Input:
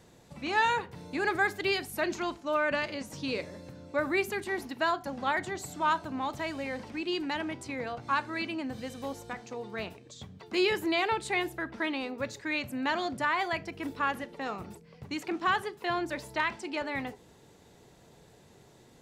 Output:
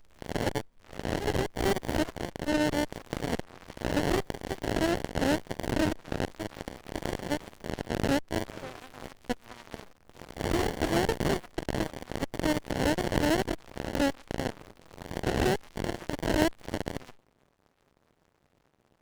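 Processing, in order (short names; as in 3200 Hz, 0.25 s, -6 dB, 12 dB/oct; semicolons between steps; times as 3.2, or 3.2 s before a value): spectral swells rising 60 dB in 1.32 s; 9.48–10.19 dynamic EQ 2500 Hz, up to -5 dB, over -51 dBFS, Q 1.9; 12.65–13.31 notch 1200 Hz, Q 23; compressor 2.5:1, threshold -37 dBFS, peak gain reduction 11.5 dB; 0.49–0.79 spectral gain 230–1400 Hz -15 dB; 4.67–5.41 transient shaper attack -4 dB, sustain +8 dB; added harmonics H 3 -8 dB, 6 -8 dB, 8 -7 dB, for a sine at -22.5 dBFS; running maximum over 33 samples; gain +8.5 dB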